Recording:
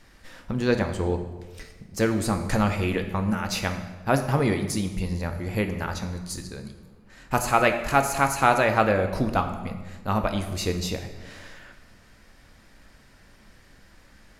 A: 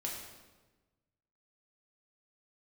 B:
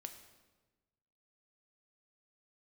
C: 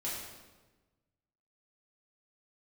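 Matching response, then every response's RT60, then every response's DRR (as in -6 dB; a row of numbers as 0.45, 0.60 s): B; 1.2, 1.2, 1.2 s; -3.0, 6.0, -8.0 dB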